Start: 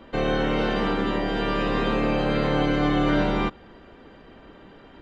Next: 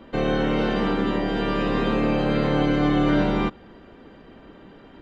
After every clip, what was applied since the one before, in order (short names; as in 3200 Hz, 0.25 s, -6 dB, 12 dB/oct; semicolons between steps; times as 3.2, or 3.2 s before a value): bell 220 Hz +4 dB 2 oct; gain -1 dB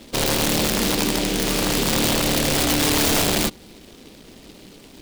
wrapped overs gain 15.5 dB; noise-modulated delay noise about 3300 Hz, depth 0.21 ms; gain +2 dB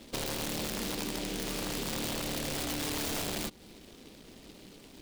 compressor 4:1, threshold -26 dBFS, peak gain reduction 8 dB; gain -7.5 dB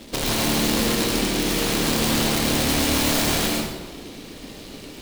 reverb RT60 1.1 s, pre-delay 90 ms, DRR -3 dB; gain +9 dB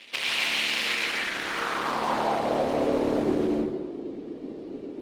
notches 60/120/180/240/300 Hz; band-pass sweep 2500 Hz -> 350 Hz, 0.85–3.35; gain +7.5 dB; Opus 20 kbps 48000 Hz